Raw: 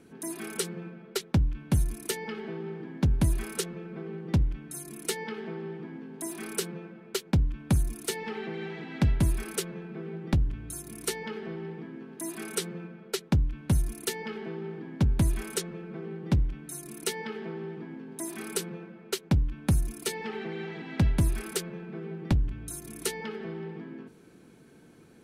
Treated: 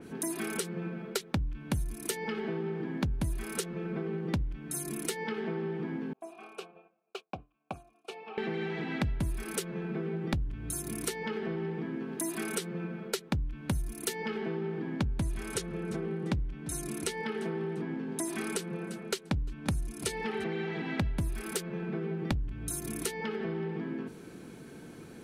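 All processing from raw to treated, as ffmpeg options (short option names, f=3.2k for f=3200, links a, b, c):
-filter_complex "[0:a]asettb=1/sr,asplit=3[a][b][c];[a]atrim=end=6.134[d];[b]atrim=start=6.13:end=8.38,asetpts=PTS-STARTPTS,afade=t=in:d=0.004:c=qsin,afade=t=out:st=2.246:d=0.004:c=qsin,asplit=3[e][f][g];[e]bandpass=f=730:t=q:w=8,volume=0dB[h];[f]bandpass=f=1.09k:t=q:w=8,volume=-6dB[i];[g]bandpass=f=2.44k:t=q:w=8,volume=-9dB[j];[h][i][j]amix=inputs=3:normalize=0,agate=range=-33dB:threshold=-53dB:ratio=3:release=100:detection=peak[k];[c]atrim=start=8.376[l];[d][k]acrossfade=d=0.004:c1=hsin:c2=qsin[m];[m][l]acrossfade=d=0.004:c1=qsin:c2=hsin,asettb=1/sr,asplit=3[n][o][p];[n]atrim=end=14.954[q];[o]atrim=start=14.95:end=20.44,asetpts=PTS-STARTPTS,afade=t=in:d=0.004:c=qsin,afade=t=out:st=5.486:d=0.004:c=qsin,lowpass=11k,aecho=1:1:346|692:0.0708|0.0205,atrim=end_sample=242109[r];[p]atrim=start=20.436[s];[q][r]acrossfade=d=0.004:c1=hsin:c2=qsin[t];[t][s]acrossfade=d=0.004:c1=qsin:c2=hsin,acompressor=threshold=-39dB:ratio=4,adynamicequalizer=threshold=0.00141:dfrequency=3600:dqfactor=0.7:tfrequency=3600:tqfactor=0.7:attack=5:release=100:ratio=0.375:range=2:mode=cutabove:tftype=highshelf,volume=7.5dB"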